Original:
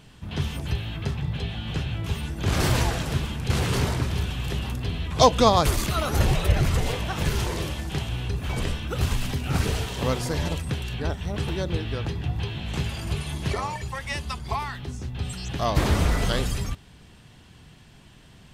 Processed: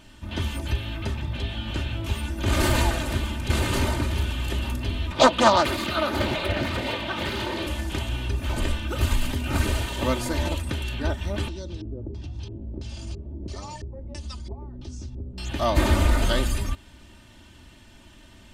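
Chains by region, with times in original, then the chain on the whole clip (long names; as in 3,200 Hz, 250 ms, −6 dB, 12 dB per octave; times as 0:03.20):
0:05.12–0:07.67: high-pass filter 130 Hz + high shelf with overshoot 5,300 Hz −8 dB, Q 1.5 + highs frequency-modulated by the lows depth 0.51 ms
0:11.48–0:15.38: drawn EQ curve 170 Hz 0 dB, 1,900 Hz −13 dB, 6,500 Hz −2 dB, 9,300 Hz +2 dB, 14,000 Hz −12 dB + downward compressor 2.5 to 1, threshold −34 dBFS + auto-filter low-pass square 1.5 Hz 440–5,500 Hz
whole clip: comb filter 3.3 ms, depth 73%; dynamic equaliser 5,500 Hz, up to −6 dB, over −50 dBFS, Q 3.9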